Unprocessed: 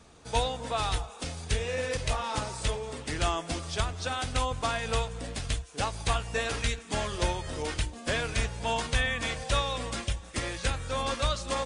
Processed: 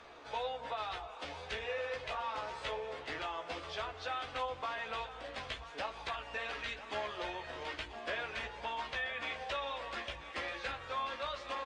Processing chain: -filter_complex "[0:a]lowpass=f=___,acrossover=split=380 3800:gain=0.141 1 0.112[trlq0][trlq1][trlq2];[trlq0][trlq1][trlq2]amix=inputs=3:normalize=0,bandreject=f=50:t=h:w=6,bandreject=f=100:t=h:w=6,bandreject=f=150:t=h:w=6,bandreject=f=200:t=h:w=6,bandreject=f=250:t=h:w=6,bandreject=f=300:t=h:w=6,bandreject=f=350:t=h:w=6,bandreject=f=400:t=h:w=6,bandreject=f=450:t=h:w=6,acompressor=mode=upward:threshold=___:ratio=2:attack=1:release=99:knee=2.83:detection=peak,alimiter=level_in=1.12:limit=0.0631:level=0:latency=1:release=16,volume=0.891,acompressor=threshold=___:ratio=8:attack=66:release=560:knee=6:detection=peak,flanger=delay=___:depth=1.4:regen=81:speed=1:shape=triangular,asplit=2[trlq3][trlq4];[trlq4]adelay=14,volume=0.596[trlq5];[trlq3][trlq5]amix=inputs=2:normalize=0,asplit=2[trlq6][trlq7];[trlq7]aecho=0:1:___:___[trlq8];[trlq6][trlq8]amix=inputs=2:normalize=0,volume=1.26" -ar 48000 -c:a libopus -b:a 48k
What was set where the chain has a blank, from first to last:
6800, 0.01, 0.0178, 2.7, 984, 0.211